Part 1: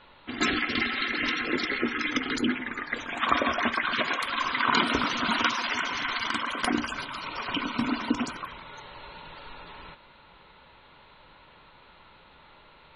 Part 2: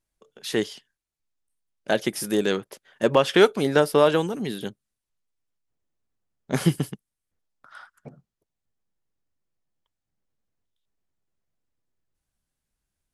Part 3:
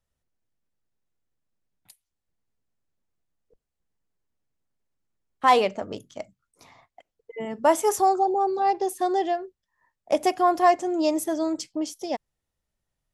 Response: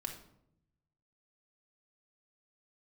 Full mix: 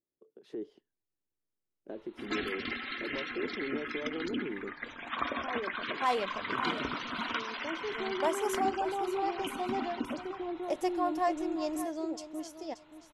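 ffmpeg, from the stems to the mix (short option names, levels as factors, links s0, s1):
-filter_complex "[0:a]lowpass=4800,adelay=1900,volume=0.335[s0];[1:a]acompressor=threshold=0.0562:ratio=6,volume=1.12[s1];[2:a]volume=0.501,asplit=2[s2][s3];[s3]volume=0.531[s4];[s1][s2]amix=inputs=2:normalize=0,bandpass=f=350:t=q:w=3.1:csg=0,alimiter=level_in=2.37:limit=0.0631:level=0:latency=1:release=31,volume=0.422,volume=1[s5];[s4]aecho=0:1:579|1158|1737|2316:1|0.23|0.0529|0.0122[s6];[s0][s5][s6]amix=inputs=3:normalize=0"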